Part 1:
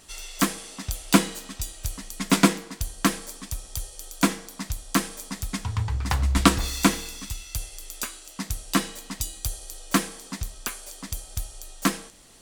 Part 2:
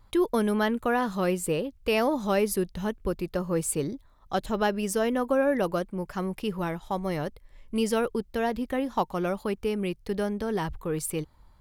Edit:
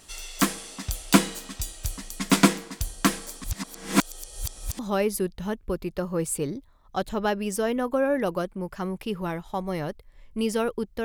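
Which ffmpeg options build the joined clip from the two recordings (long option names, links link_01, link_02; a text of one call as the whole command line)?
ffmpeg -i cue0.wav -i cue1.wav -filter_complex "[0:a]apad=whole_dur=11.04,atrim=end=11.04,asplit=2[link_01][link_02];[link_01]atrim=end=3.442[link_03];[link_02]atrim=start=3.438:end=4.792,asetpts=PTS-STARTPTS,areverse[link_04];[1:a]atrim=start=2.158:end=8.41[link_05];[link_03][link_04]acrossfade=duration=0.004:curve1=hsin:curve2=hsin[link_06];[link_06][link_05]acrossfade=duration=0.004:curve1=hsin:curve2=hsin" out.wav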